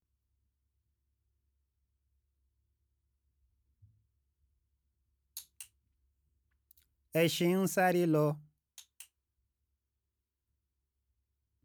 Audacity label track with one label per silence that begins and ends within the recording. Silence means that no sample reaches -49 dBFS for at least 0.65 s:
5.640000	6.710000	silence